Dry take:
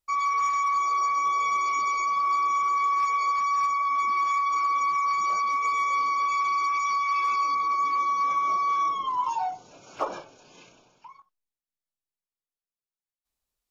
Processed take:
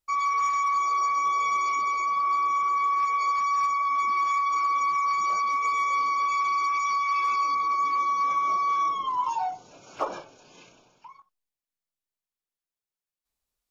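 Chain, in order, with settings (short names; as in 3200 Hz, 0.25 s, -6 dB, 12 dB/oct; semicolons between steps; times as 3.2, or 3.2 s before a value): 1.75–3.2 high shelf 5900 Hz -8.5 dB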